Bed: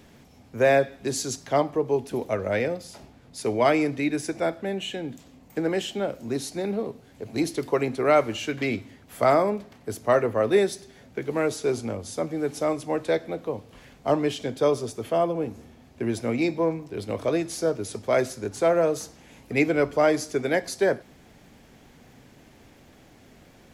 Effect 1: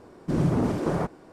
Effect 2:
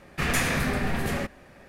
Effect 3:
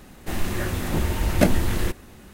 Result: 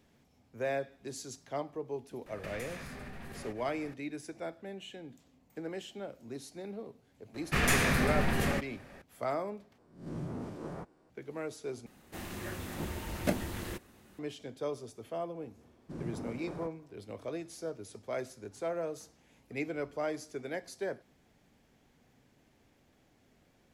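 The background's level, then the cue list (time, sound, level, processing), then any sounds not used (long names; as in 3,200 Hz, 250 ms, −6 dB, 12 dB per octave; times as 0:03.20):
bed −14.5 dB
0:02.26: mix in 2 −1.5 dB + downward compressor 10 to 1, threshold −40 dBFS
0:07.34: mix in 2 −2 dB
0:09.78: overwrite with 1 −17.5 dB + peak hold with a rise ahead of every peak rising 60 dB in 0.46 s
0:11.86: overwrite with 3 −11.5 dB + high-pass filter 110 Hz 6 dB per octave
0:15.61: mix in 1 −17.5 dB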